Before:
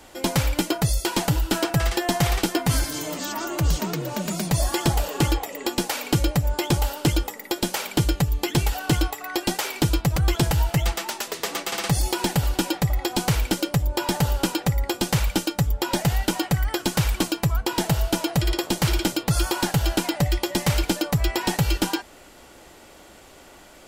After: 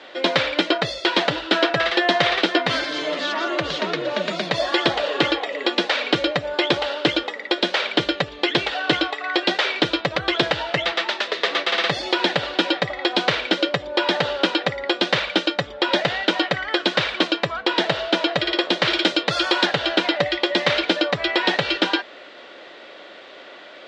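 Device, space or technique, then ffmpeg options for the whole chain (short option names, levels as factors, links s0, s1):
phone earpiece: -filter_complex "[0:a]highpass=400,equalizer=f=570:t=q:w=4:g=4,equalizer=f=850:t=q:w=4:g=-7,equalizer=f=1800:t=q:w=4:g=4,equalizer=f=3700:t=q:w=4:g=6,lowpass=f=4000:w=0.5412,lowpass=f=4000:w=1.3066,asettb=1/sr,asplit=3[s0][s1][s2];[s0]atrim=end=18.904[s3];[s1]atrim=start=18.9:end=19.66,asetpts=PTS-STARTPTS,afade=t=in:d=0.004:c=qsin,afade=t=out:st=0.756:d=0.004:c=qsin,highshelf=f=7000:g=9.5[s4];[s2]atrim=start=19.656[s5];[s3][s4]acrossfade=d=0.004:c1=hsin:c2=qsin[s6];[s6][s5]acrossfade=d=0.004:c1=qsin:c2=hsin,volume=2.37"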